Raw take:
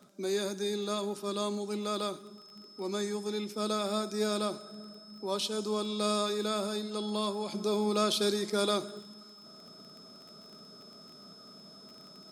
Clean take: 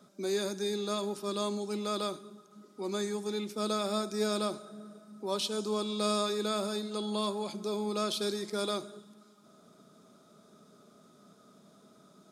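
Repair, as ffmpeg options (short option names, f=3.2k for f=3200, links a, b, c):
-af "adeclick=t=4,bandreject=f=5.2k:w=30,asetnsamples=n=441:p=0,asendcmd='7.52 volume volume -4dB',volume=0dB"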